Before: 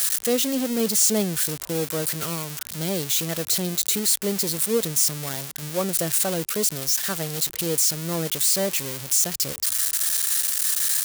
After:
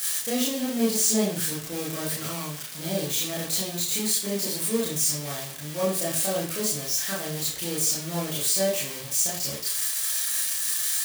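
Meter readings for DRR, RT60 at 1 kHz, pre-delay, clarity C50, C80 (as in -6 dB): -7.0 dB, 0.45 s, 25 ms, 4.0 dB, 9.0 dB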